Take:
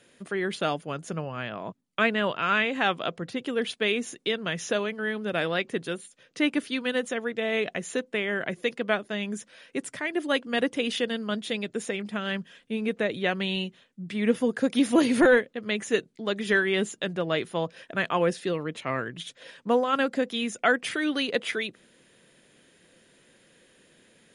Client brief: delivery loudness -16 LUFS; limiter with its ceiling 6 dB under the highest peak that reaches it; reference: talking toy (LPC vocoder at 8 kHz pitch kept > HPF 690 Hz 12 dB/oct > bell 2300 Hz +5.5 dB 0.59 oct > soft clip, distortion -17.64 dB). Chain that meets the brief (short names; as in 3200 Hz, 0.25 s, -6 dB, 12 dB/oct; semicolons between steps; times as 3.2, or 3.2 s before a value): limiter -16.5 dBFS; LPC vocoder at 8 kHz pitch kept; HPF 690 Hz 12 dB/oct; bell 2300 Hz +5.5 dB 0.59 oct; soft clip -20 dBFS; gain +17 dB